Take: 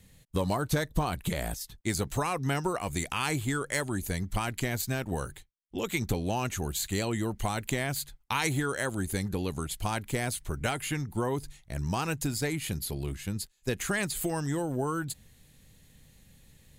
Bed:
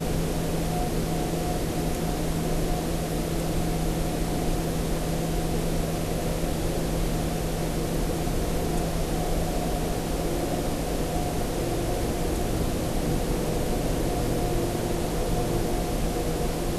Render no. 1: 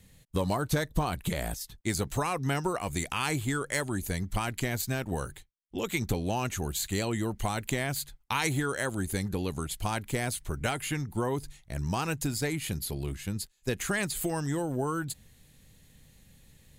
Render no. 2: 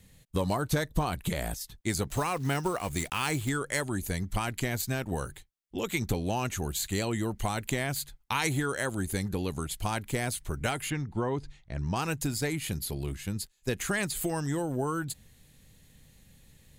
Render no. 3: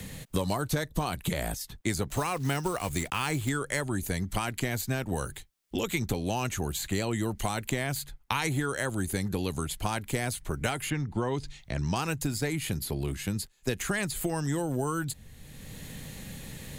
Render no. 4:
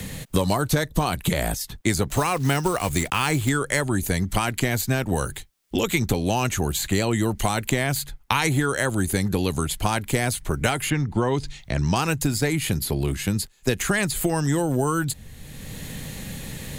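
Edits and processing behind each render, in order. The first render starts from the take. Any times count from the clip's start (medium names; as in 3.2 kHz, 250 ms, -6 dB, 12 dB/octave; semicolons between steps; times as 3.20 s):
no audible change
2.10–3.50 s: block-companded coder 5-bit; 10.90–11.96 s: distance through air 130 m
three bands compressed up and down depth 70%
trim +7.5 dB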